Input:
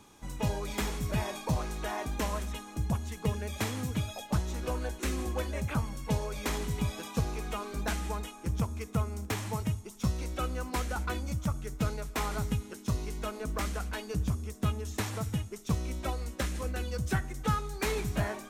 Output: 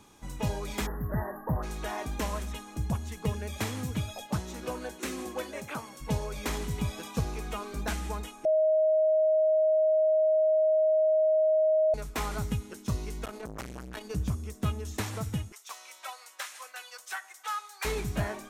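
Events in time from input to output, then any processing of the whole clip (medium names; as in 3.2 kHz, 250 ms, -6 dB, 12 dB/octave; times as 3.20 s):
0.86–1.63 s: spectral selection erased 2–11 kHz
4.25–6.00 s: high-pass 88 Hz -> 370 Hz
8.45–11.94 s: bleep 627 Hz -20.5 dBFS
13.25–14.11 s: transformer saturation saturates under 830 Hz
15.52–17.85 s: high-pass 810 Hz 24 dB/octave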